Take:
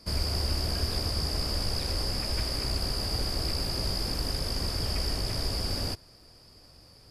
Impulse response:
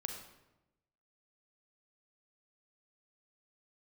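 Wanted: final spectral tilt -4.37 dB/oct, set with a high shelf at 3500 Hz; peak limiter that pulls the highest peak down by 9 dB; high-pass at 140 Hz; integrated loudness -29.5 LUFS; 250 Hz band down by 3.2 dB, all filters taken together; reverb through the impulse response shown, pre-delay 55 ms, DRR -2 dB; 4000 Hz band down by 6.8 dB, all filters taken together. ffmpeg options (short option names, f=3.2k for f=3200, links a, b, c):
-filter_complex "[0:a]highpass=140,equalizer=f=250:t=o:g=-3.5,highshelf=f=3.5k:g=-4.5,equalizer=f=4k:t=o:g=-5,alimiter=level_in=8.5dB:limit=-24dB:level=0:latency=1,volume=-8.5dB,asplit=2[a][b];[1:a]atrim=start_sample=2205,adelay=55[c];[b][c]afir=irnorm=-1:irlink=0,volume=2.5dB[d];[a][d]amix=inputs=2:normalize=0,volume=7dB"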